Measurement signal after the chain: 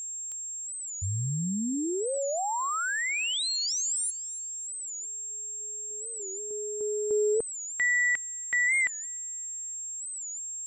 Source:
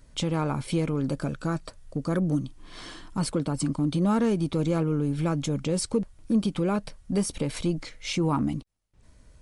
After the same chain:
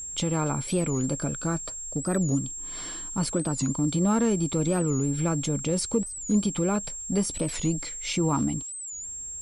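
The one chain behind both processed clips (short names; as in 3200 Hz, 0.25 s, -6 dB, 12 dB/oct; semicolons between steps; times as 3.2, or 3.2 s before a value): whine 7500 Hz -34 dBFS; thin delay 0.285 s, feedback 38%, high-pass 3900 Hz, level -22 dB; record warp 45 rpm, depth 160 cents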